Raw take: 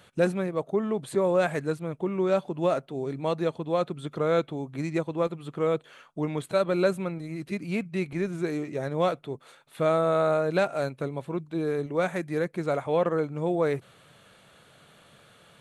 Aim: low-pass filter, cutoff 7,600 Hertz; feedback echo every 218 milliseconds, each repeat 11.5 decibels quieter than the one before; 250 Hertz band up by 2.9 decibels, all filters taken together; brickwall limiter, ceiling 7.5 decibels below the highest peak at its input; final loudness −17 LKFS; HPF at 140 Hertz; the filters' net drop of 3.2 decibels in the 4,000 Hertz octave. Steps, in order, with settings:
high-pass filter 140 Hz
low-pass filter 7,600 Hz
parametric band 250 Hz +5.5 dB
parametric band 4,000 Hz −3.5 dB
brickwall limiter −17 dBFS
repeating echo 218 ms, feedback 27%, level −11.5 dB
level +11.5 dB

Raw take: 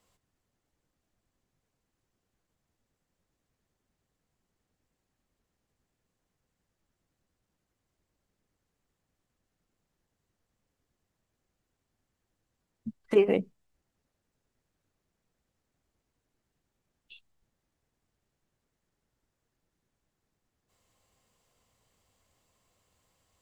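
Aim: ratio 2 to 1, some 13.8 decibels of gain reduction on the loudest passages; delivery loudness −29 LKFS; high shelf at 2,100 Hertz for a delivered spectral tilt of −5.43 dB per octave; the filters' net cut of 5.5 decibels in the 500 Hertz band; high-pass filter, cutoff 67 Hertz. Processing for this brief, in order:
high-pass filter 67 Hz
parametric band 500 Hz −7 dB
high-shelf EQ 2,100 Hz −8.5 dB
downward compressor 2 to 1, threshold −47 dBFS
level +17.5 dB

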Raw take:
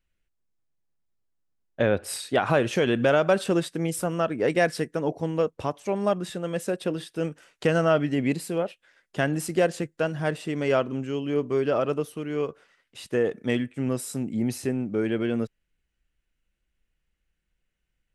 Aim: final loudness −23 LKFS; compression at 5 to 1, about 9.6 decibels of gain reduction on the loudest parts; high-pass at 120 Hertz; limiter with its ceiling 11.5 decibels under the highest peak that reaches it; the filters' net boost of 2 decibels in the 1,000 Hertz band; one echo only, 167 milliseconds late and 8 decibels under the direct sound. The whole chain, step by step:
high-pass filter 120 Hz
parametric band 1,000 Hz +3 dB
downward compressor 5 to 1, threshold −26 dBFS
brickwall limiter −23 dBFS
single-tap delay 167 ms −8 dB
level +10.5 dB

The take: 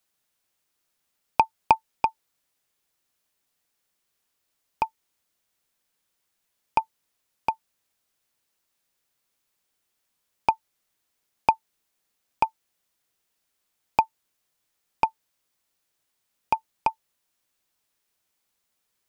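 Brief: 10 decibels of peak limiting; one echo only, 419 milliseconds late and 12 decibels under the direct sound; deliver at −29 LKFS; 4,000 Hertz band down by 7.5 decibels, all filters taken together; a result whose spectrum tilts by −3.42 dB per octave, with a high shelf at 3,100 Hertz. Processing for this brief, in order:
high-shelf EQ 3,100 Hz −5.5 dB
parametric band 4,000 Hz −6.5 dB
brickwall limiter −15 dBFS
single-tap delay 419 ms −12 dB
level +8 dB

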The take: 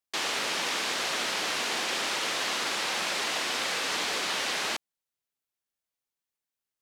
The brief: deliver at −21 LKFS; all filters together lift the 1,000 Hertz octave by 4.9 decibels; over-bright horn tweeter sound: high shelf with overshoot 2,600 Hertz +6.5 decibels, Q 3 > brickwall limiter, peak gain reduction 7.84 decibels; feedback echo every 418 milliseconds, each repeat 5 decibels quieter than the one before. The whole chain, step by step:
parametric band 1,000 Hz +7.5 dB
high shelf with overshoot 2,600 Hz +6.5 dB, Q 3
repeating echo 418 ms, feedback 56%, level −5 dB
level +2.5 dB
brickwall limiter −14 dBFS

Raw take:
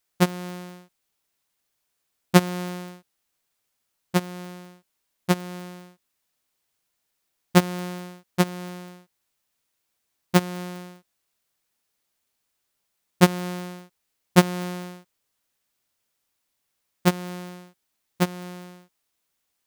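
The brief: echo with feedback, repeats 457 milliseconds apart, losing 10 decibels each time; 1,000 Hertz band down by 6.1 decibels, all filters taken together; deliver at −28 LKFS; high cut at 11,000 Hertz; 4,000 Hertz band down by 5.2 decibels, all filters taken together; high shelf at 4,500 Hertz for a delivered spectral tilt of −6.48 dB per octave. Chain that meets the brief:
low-pass filter 11,000 Hz
parametric band 1,000 Hz −8.5 dB
parametric band 4,000 Hz −8 dB
high-shelf EQ 4,500 Hz +3 dB
repeating echo 457 ms, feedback 32%, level −10 dB
level −0.5 dB

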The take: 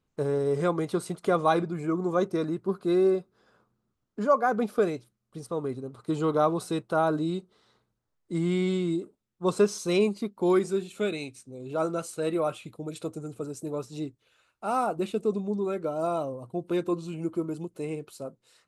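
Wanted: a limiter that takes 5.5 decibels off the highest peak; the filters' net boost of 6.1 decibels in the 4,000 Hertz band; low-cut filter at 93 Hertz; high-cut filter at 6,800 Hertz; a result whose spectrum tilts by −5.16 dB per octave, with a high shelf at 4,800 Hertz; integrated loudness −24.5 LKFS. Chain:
high-pass filter 93 Hz
low-pass filter 6,800 Hz
parametric band 4,000 Hz +5 dB
high-shelf EQ 4,800 Hz +5.5 dB
level +5 dB
brickwall limiter −10.5 dBFS

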